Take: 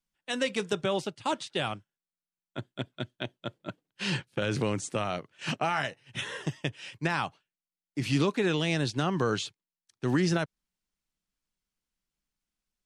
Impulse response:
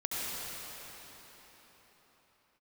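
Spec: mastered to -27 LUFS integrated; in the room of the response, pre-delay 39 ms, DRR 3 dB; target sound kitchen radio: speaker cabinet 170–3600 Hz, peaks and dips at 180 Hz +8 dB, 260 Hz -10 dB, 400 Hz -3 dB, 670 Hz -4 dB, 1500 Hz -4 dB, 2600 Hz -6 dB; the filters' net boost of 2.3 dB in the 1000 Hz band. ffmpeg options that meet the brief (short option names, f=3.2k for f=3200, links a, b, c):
-filter_complex "[0:a]equalizer=f=1k:t=o:g=5,asplit=2[a][b];[1:a]atrim=start_sample=2205,adelay=39[c];[b][c]afir=irnorm=-1:irlink=0,volume=-9.5dB[d];[a][d]amix=inputs=2:normalize=0,highpass=170,equalizer=f=180:t=q:w=4:g=8,equalizer=f=260:t=q:w=4:g=-10,equalizer=f=400:t=q:w=4:g=-3,equalizer=f=670:t=q:w=4:g=-4,equalizer=f=1.5k:t=q:w=4:g=-4,equalizer=f=2.6k:t=q:w=4:g=-6,lowpass=f=3.6k:w=0.5412,lowpass=f=3.6k:w=1.3066,volume=4.5dB"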